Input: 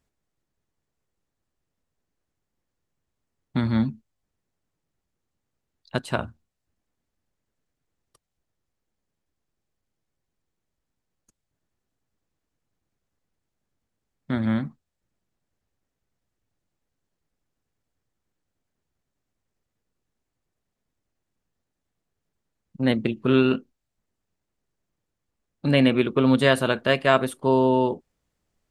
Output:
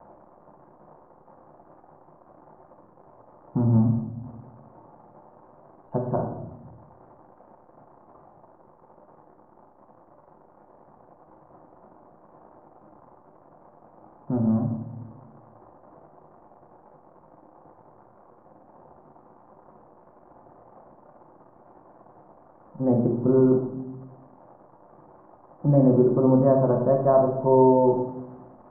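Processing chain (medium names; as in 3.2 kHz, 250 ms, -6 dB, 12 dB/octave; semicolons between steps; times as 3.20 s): zero-crossing glitches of -15.5 dBFS; steep low-pass 970 Hz 36 dB/octave; band-stop 430 Hz, Q 12; simulated room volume 270 m³, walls mixed, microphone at 0.88 m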